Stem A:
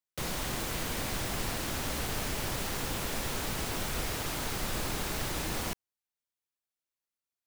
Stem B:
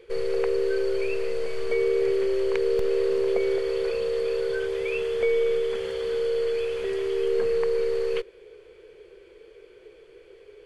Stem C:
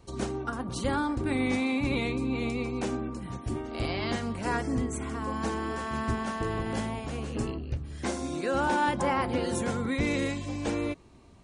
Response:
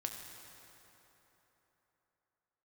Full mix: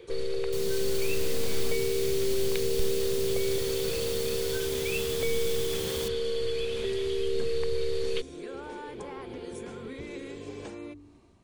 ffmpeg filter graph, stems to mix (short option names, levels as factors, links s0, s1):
-filter_complex "[0:a]highpass=95,adelay=350,volume=0.668[s0];[1:a]equalizer=f=3700:w=5.9:g=10,volume=1[s1];[2:a]bandreject=f=48.36:t=h:w=4,bandreject=f=96.72:t=h:w=4,bandreject=f=145.08:t=h:w=4,bandreject=f=193.44:t=h:w=4,bandreject=f=241.8:t=h:w=4,bandreject=f=290.16:t=h:w=4,bandreject=f=338.52:t=h:w=4,bandreject=f=386.88:t=h:w=4,bandreject=f=435.24:t=h:w=4,acompressor=threshold=0.0126:ratio=6,volume=0.473[s2];[s0][s1][s2]amix=inputs=3:normalize=0,dynaudnorm=f=410:g=3:m=1.58,equalizer=f=340:t=o:w=0.45:g=5.5,acrossover=split=210|3000[s3][s4][s5];[s4]acompressor=threshold=0.0178:ratio=3[s6];[s3][s6][s5]amix=inputs=3:normalize=0"